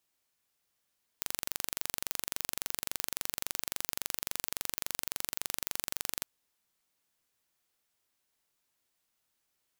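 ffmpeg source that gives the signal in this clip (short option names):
-f lavfi -i "aevalsrc='0.531*eq(mod(n,1869),0)':d=5.04:s=44100"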